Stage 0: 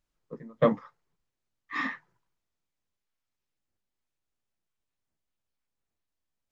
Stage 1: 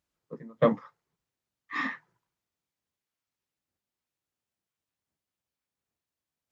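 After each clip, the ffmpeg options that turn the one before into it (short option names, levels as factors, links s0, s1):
-af "highpass=70"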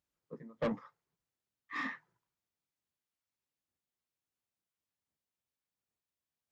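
-af "asoftclip=type=tanh:threshold=0.075,volume=0.531"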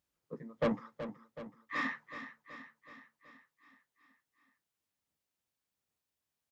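-af "aecho=1:1:375|750|1125|1500|1875|2250|2625:0.282|0.166|0.0981|0.0579|0.0342|0.0201|0.0119,volume=1.41"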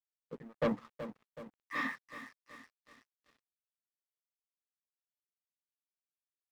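-af "aeval=exprs='sgn(val(0))*max(abs(val(0))-0.00168,0)':c=same"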